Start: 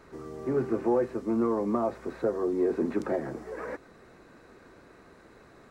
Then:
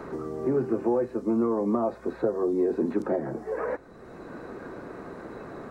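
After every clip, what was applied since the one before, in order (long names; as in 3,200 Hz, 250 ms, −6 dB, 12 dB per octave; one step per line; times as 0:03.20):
noise reduction from a noise print of the clip's start 6 dB
parametric band 2,300 Hz −6.5 dB 1.6 octaves
multiband upward and downward compressor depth 70%
level +2.5 dB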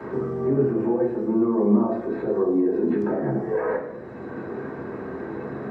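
brickwall limiter −22.5 dBFS, peak gain reduction 9 dB
convolution reverb RT60 0.85 s, pre-delay 3 ms, DRR −4.5 dB
level −8.5 dB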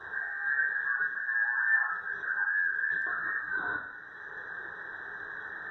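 frequency inversion band by band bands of 2,000 Hz
level −8.5 dB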